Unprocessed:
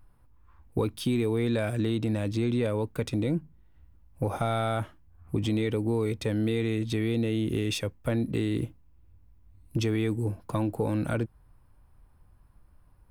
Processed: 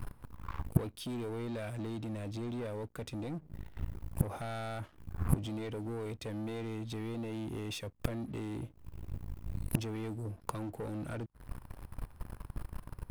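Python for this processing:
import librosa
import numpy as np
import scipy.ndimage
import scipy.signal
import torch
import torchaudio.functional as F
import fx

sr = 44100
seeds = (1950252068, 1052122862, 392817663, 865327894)

y = fx.leveller(x, sr, passes=3)
y = fx.gate_flip(y, sr, shuts_db=-25.0, range_db=-29)
y = y * librosa.db_to_amplitude(10.5)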